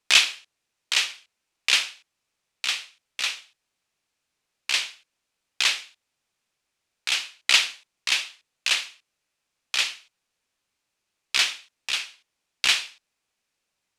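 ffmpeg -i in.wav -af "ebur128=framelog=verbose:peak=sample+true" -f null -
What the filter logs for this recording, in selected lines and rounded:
Integrated loudness:
  I:         -23.9 LUFS
  Threshold: -35.2 LUFS
Loudness range:
  LRA:         5.1 LU
  Threshold: -47.1 LUFS
  LRA low:   -30.0 LUFS
  LRA high:  -25.0 LUFS
Sample peak:
  Peak:       -2.1 dBFS
True peak:
  Peak:       -2.0 dBFS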